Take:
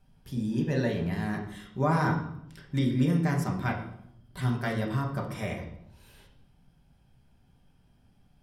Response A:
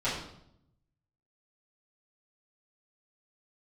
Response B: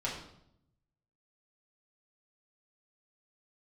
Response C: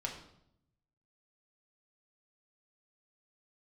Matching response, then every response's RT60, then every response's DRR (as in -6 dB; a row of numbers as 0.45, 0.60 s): C; 0.75, 0.75, 0.75 s; -12.5, -6.0, -0.5 dB